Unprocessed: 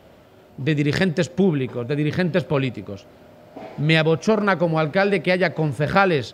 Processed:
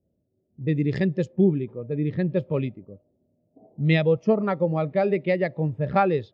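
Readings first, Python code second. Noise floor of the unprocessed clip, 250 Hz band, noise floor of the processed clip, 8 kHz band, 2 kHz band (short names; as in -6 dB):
-49 dBFS, -3.0 dB, -73 dBFS, under -20 dB, -10.0 dB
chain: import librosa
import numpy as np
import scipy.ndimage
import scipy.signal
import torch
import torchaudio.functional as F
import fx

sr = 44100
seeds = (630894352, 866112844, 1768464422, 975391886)

y = fx.env_lowpass(x, sr, base_hz=370.0, full_db=-15.0)
y = fx.notch(y, sr, hz=1500.0, q=5.9)
y = fx.spectral_expand(y, sr, expansion=1.5)
y = y * 10.0 ** (-4.0 / 20.0)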